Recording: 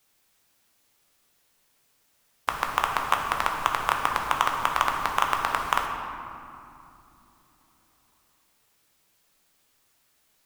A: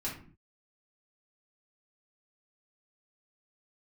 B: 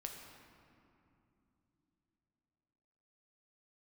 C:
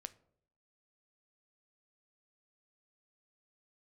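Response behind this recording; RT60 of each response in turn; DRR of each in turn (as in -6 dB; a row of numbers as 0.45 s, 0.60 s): B; 0.45 s, no single decay rate, 0.70 s; -7.0 dB, 1.5 dB, 12.5 dB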